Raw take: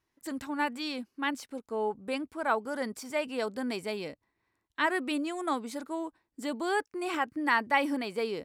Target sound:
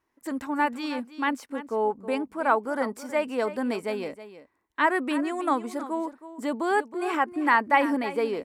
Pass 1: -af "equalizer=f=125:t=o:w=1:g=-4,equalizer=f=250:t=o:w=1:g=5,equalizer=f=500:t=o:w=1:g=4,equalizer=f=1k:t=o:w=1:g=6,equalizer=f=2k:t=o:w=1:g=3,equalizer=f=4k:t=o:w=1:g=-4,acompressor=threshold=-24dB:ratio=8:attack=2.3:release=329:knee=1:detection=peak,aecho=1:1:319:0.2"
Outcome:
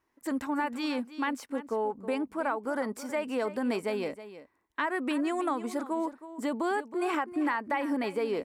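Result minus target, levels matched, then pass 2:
compressor: peak gain reduction +11.5 dB
-af "equalizer=f=125:t=o:w=1:g=-4,equalizer=f=250:t=o:w=1:g=5,equalizer=f=500:t=o:w=1:g=4,equalizer=f=1k:t=o:w=1:g=6,equalizer=f=2k:t=o:w=1:g=3,equalizer=f=4k:t=o:w=1:g=-4,aecho=1:1:319:0.2"

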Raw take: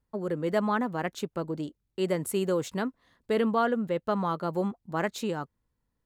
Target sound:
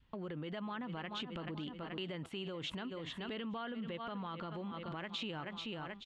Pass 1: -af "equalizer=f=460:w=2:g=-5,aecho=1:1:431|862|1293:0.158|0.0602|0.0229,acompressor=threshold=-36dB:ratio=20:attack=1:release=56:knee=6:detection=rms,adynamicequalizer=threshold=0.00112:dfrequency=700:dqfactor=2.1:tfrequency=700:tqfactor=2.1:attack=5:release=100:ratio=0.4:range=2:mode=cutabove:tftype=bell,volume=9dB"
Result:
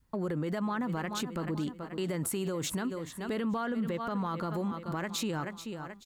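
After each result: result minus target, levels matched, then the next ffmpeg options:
compressor: peak gain reduction -10.5 dB; 4000 Hz band -7.5 dB
-af "equalizer=f=460:w=2:g=-5,aecho=1:1:431|862|1293:0.158|0.0602|0.0229,acompressor=threshold=-47dB:ratio=20:attack=1:release=56:knee=6:detection=rms,adynamicequalizer=threshold=0.00112:dfrequency=700:dqfactor=2.1:tfrequency=700:tqfactor=2.1:attack=5:release=100:ratio=0.4:range=2:mode=cutabove:tftype=bell,volume=9dB"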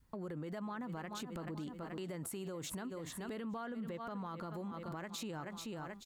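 4000 Hz band -6.5 dB
-af "equalizer=f=460:w=2:g=-5,aecho=1:1:431|862|1293:0.158|0.0602|0.0229,acompressor=threshold=-47dB:ratio=20:attack=1:release=56:knee=6:detection=rms,adynamicequalizer=threshold=0.00112:dfrequency=700:dqfactor=2.1:tfrequency=700:tqfactor=2.1:attack=5:release=100:ratio=0.4:range=2:mode=cutabove:tftype=bell,lowpass=f=3.1k:t=q:w=4.1,volume=9dB"

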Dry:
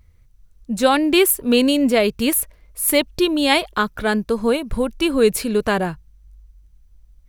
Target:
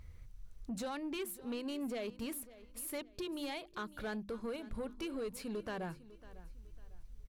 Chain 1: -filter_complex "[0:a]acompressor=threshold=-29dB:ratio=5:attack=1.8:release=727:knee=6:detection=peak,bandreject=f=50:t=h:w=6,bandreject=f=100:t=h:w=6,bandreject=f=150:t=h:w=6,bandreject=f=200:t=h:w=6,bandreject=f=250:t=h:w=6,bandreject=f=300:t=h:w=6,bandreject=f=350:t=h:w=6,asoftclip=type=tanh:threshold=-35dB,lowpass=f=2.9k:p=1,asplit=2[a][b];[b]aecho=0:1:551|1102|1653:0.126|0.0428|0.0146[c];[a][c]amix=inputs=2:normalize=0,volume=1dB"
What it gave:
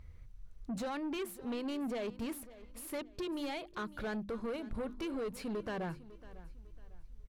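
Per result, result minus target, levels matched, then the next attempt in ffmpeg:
8000 Hz band -5.5 dB; compressor: peak gain reduction -5 dB
-filter_complex "[0:a]acompressor=threshold=-29dB:ratio=5:attack=1.8:release=727:knee=6:detection=peak,bandreject=f=50:t=h:w=6,bandreject=f=100:t=h:w=6,bandreject=f=150:t=h:w=6,bandreject=f=200:t=h:w=6,bandreject=f=250:t=h:w=6,bandreject=f=300:t=h:w=6,bandreject=f=350:t=h:w=6,asoftclip=type=tanh:threshold=-35dB,lowpass=f=7.6k:p=1,asplit=2[a][b];[b]aecho=0:1:551|1102|1653:0.126|0.0428|0.0146[c];[a][c]amix=inputs=2:normalize=0,volume=1dB"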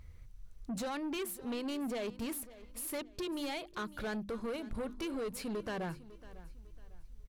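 compressor: peak gain reduction -5 dB
-filter_complex "[0:a]acompressor=threshold=-35.5dB:ratio=5:attack=1.8:release=727:knee=6:detection=peak,bandreject=f=50:t=h:w=6,bandreject=f=100:t=h:w=6,bandreject=f=150:t=h:w=6,bandreject=f=200:t=h:w=6,bandreject=f=250:t=h:w=6,bandreject=f=300:t=h:w=6,bandreject=f=350:t=h:w=6,asoftclip=type=tanh:threshold=-35dB,lowpass=f=7.6k:p=1,asplit=2[a][b];[b]aecho=0:1:551|1102|1653:0.126|0.0428|0.0146[c];[a][c]amix=inputs=2:normalize=0,volume=1dB"

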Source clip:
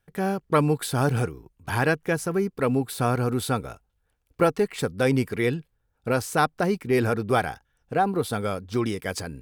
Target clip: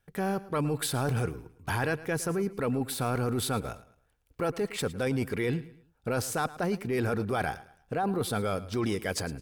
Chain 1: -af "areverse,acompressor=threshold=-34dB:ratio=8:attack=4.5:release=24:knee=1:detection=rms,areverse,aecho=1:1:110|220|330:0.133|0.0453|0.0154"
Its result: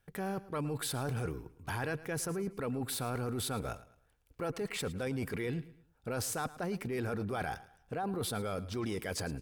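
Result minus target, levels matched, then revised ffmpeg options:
compressor: peak gain reduction +7 dB
-af "areverse,acompressor=threshold=-26dB:ratio=8:attack=4.5:release=24:knee=1:detection=rms,areverse,aecho=1:1:110|220|330:0.133|0.0453|0.0154"

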